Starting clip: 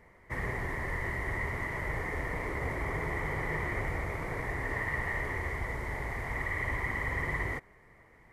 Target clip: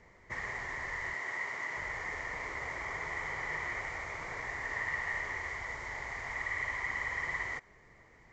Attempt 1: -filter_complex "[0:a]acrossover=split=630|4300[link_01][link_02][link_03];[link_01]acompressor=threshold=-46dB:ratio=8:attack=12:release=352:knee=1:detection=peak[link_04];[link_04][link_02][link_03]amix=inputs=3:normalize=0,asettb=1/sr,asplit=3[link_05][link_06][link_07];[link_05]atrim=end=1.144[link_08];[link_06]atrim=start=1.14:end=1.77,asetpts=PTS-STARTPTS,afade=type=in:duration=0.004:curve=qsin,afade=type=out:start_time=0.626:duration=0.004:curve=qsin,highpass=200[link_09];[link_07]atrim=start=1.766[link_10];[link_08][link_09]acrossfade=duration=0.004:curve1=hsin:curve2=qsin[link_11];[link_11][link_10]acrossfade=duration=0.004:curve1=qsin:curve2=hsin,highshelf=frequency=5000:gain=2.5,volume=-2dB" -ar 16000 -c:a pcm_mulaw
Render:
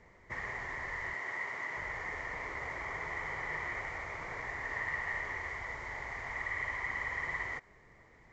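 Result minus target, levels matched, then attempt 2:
8,000 Hz band −4.5 dB
-filter_complex "[0:a]acrossover=split=630|4300[link_01][link_02][link_03];[link_01]acompressor=threshold=-46dB:ratio=8:attack=12:release=352:knee=1:detection=peak[link_04];[link_04][link_02][link_03]amix=inputs=3:normalize=0,asettb=1/sr,asplit=3[link_05][link_06][link_07];[link_05]atrim=end=1.144[link_08];[link_06]atrim=start=1.14:end=1.77,asetpts=PTS-STARTPTS,afade=type=in:duration=0.004:curve=qsin,afade=type=out:start_time=0.626:duration=0.004:curve=qsin,highpass=200[link_09];[link_07]atrim=start=1.766[link_10];[link_08][link_09]acrossfade=duration=0.004:curve1=hsin:curve2=qsin[link_11];[link_11][link_10]acrossfade=duration=0.004:curve1=qsin:curve2=hsin,highshelf=frequency=5000:gain=11.5,volume=-2dB" -ar 16000 -c:a pcm_mulaw

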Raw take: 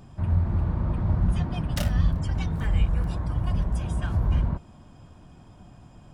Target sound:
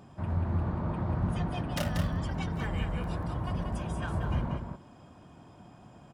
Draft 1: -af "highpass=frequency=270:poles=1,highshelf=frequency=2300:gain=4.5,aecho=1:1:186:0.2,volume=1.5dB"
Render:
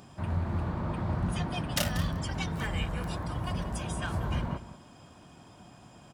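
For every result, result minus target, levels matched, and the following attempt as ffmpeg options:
4,000 Hz band +7.0 dB; echo-to-direct −8 dB
-af "highpass=frequency=270:poles=1,highshelf=frequency=2300:gain=-6.5,aecho=1:1:186:0.2,volume=1.5dB"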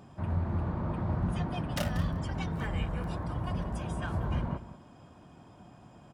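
echo-to-direct −8 dB
-af "highpass=frequency=270:poles=1,highshelf=frequency=2300:gain=-6.5,aecho=1:1:186:0.501,volume=1.5dB"

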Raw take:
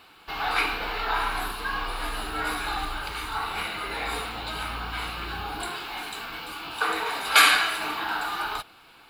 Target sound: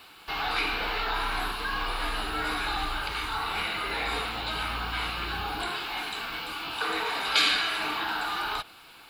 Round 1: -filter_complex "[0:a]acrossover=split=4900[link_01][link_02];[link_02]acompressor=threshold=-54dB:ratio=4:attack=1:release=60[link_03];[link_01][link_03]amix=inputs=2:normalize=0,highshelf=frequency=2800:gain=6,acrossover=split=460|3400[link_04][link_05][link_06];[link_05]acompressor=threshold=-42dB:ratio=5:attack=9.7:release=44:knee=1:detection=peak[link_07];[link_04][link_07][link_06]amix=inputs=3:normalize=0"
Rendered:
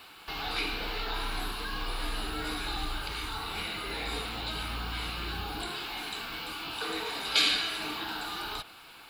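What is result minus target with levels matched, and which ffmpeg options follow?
downward compressor: peak gain reduction +9 dB
-filter_complex "[0:a]acrossover=split=4900[link_01][link_02];[link_02]acompressor=threshold=-54dB:ratio=4:attack=1:release=60[link_03];[link_01][link_03]amix=inputs=2:normalize=0,highshelf=frequency=2800:gain=6,acrossover=split=460|3400[link_04][link_05][link_06];[link_05]acompressor=threshold=-31dB:ratio=5:attack=9.7:release=44:knee=1:detection=peak[link_07];[link_04][link_07][link_06]amix=inputs=3:normalize=0"

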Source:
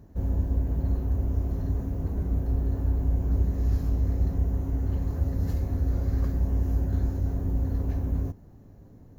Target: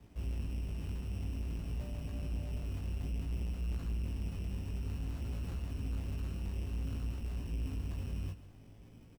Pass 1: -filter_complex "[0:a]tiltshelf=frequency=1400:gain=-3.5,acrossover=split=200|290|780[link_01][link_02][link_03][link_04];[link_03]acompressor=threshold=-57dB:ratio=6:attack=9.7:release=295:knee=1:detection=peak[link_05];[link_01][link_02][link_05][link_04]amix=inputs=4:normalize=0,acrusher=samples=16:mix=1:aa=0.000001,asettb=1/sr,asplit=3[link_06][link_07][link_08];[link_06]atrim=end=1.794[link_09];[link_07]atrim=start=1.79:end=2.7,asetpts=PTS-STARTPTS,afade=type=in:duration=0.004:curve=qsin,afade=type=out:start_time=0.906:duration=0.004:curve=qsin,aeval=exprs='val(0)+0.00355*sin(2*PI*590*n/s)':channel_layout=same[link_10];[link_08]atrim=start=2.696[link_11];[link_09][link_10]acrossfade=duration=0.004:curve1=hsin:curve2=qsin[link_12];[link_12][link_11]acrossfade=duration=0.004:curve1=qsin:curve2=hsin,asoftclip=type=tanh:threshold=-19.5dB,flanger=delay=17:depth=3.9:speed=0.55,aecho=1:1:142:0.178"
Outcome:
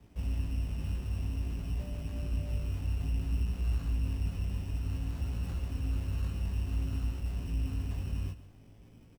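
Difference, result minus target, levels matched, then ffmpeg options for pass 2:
soft clipping: distortion −14 dB
-filter_complex "[0:a]tiltshelf=frequency=1400:gain=-3.5,acrossover=split=200|290|780[link_01][link_02][link_03][link_04];[link_03]acompressor=threshold=-57dB:ratio=6:attack=9.7:release=295:knee=1:detection=peak[link_05];[link_01][link_02][link_05][link_04]amix=inputs=4:normalize=0,acrusher=samples=16:mix=1:aa=0.000001,asettb=1/sr,asplit=3[link_06][link_07][link_08];[link_06]atrim=end=1.794[link_09];[link_07]atrim=start=1.79:end=2.7,asetpts=PTS-STARTPTS,afade=type=in:duration=0.004:curve=qsin,afade=type=out:start_time=0.906:duration=0.004:curve=qsin,aeval=exprs='val(0)+0.00355*sin(2*PI*590*n/s)':channel_layout=same[link_10];[link_08]atrim=start=2.696[link_11];[link_09][link_10]acrossfade=duration=0.004:curve1=hsin:curve2=qsin[link_12];[link_12][link_11]acrossfade=duration=0.004:curve1=qsin:curve2=hsin,asoftclip=type=tanh:threshold=-31dB,flanger=delay=17:depth=3.9:speed=0.55,aecho=1:1:142:0.178"

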